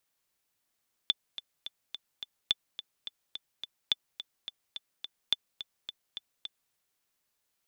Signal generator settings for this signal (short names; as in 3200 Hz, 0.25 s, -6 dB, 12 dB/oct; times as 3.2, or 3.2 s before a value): metronome 213 bpm, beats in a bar 5, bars 4, 3500 Hz, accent 13.5 dB -11.5 dBFS